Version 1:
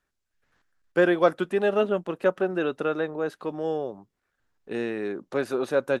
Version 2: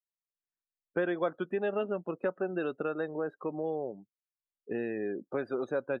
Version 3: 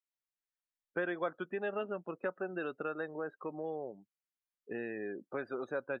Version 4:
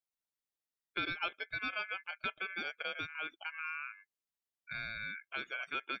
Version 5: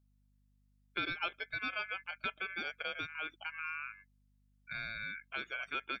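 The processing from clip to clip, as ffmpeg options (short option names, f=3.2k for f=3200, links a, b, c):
-af "afftdn=nr=36:nf=-37,acompressor=threshold=-32dB:ratio=2.5"
-af "equalizer=f=1.7k:w=0.66:g=6.5,volume=-7dB"
-af "aeval=exprs='val(0)*sin(2*PI*1900*n/s)':c=same,volume=1dB"
-af "aeval=exprs='val(0)+0.000316*(sin(2*PI*50*n/s)+sin(2*PI*2*50*n/s)/2+sin(2*PI*3*50*n/s)/3+sin(2*PI*4*50*n/s)/4+sin(2*PI*5*50*n/s)/5)':c=same"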